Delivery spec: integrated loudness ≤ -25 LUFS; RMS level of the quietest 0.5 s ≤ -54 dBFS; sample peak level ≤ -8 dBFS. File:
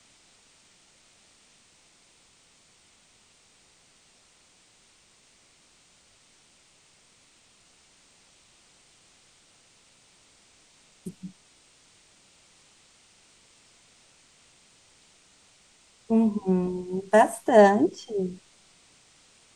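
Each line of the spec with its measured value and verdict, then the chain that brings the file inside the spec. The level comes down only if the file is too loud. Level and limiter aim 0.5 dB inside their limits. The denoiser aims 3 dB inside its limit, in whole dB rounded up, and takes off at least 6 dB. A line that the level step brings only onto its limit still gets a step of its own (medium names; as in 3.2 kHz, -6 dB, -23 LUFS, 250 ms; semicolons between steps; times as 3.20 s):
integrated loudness -22.5 LUFS: fail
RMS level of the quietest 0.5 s -60 dBFS: pass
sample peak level -5.5 dBFS: fail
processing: trim -3 dB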